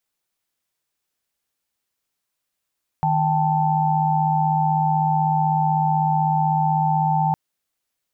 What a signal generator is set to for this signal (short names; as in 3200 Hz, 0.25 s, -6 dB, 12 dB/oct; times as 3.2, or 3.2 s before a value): chord D#3/G5/A5 sine, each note -21 dBFS 4.31 s